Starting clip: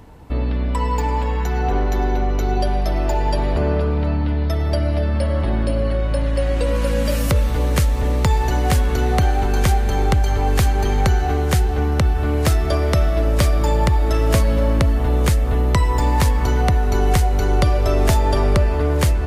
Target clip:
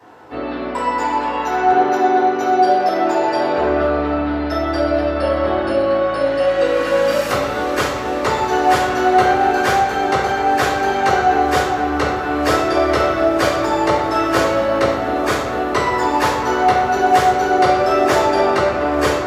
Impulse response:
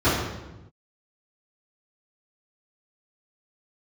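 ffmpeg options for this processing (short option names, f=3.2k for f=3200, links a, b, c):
-filter_complex "[0:a]highpass=620[a];[1:a]atrim=start_sample=2205,asetrate=48510,aresample=44100[b];[a][b]afir=irnorm=-1:irlink=0,volume=-9.5dB"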